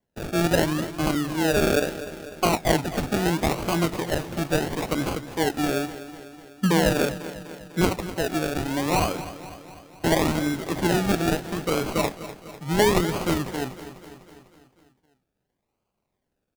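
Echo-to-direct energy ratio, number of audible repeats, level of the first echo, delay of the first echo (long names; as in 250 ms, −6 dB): −12.0 dB, 5, −14.0 dB, 249 ms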